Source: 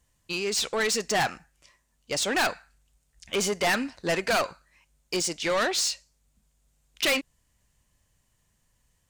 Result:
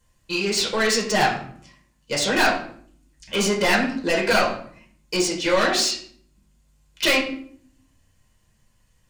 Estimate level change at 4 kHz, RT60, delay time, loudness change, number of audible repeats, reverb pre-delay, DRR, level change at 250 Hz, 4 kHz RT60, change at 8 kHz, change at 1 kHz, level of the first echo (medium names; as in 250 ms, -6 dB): +5.0 dB, 0.60 s, no echo, +5.0 dB, no echo, 6 ms, -3.0 dB, +8.0 dB, 0.40 s, +2.5 dB, +6.0 dB, no echo